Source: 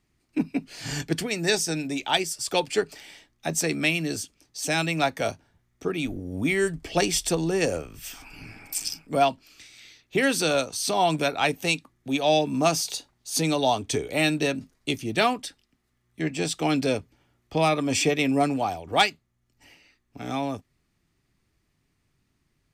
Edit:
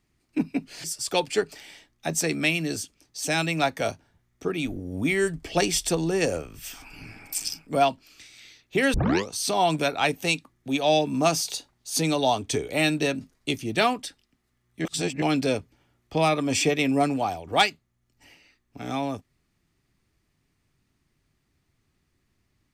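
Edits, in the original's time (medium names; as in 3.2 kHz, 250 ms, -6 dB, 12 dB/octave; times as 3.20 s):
0.84–2.24 s: delete
10.34 s: tape start 0.35 s
16.25–16.62 s: reverse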